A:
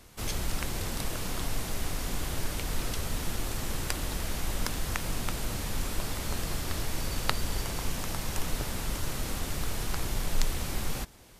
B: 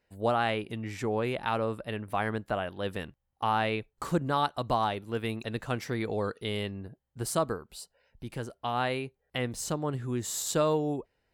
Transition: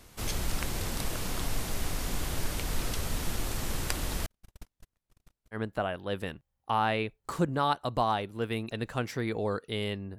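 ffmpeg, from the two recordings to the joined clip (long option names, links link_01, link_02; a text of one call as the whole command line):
ffmpeg -i cue0.wav -i cue1.wav -filter_complex "[0:a]asettb=1/sr,asplit=3[link_01][link_02][link_03];[link_01]atrim=end=4.264[link_04];[link_02]atrim=start=4.26:end=5.59,asetpts=PTS-STARTPTS,afade=type=in:duration=0.004:curve=qsin,afade=type=out:start_time=1.326:duration=0.004:curve=qsin,agate=range=-57dB:threshold=-24dB:ratio=16:release=100:detection=peak[link_05];[link_03]atrim=start=5.586[link_06];[link_04][link_05]acrossfade=duration=0.004:curve1=hsin:curve2=qsin[link_07];[link_07][link_06]acrossfade=duration=0.004:curve1=qsin:curve2=hsin,apad=whole_dur=10.18,atrim=end=10.18,atrim=end=5.59,asetpts=PTS-STARTPTS[link_08];[1:a]atrim=start=2.24:end=6.91,asetpts=PTS-STARTPTS[link_09];[link_08][link_09]acrossfade=duration=0.08:curve1=tri:curve2=tri" out.wav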